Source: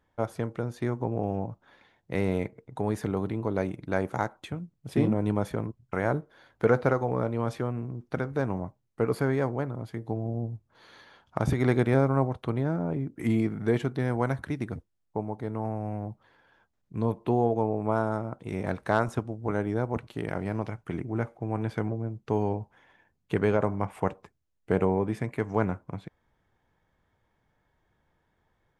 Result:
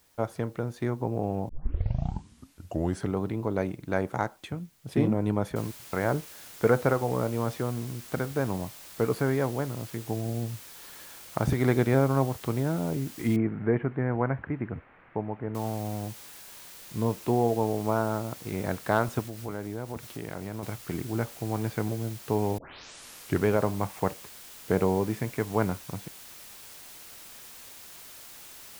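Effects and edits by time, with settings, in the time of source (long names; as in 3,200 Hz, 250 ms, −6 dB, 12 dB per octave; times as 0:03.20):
0:01.49: tape start 1.66 s
0:05.56: noise floor change −65 dB −47 dB
0:13.36–0:15.55: Butterworth low-pass 2,200 Hz
0:19.25–0:20.63: downward compressor 2 to 1, threshold −35 dBFS
0:22.58: tape start 0.87 s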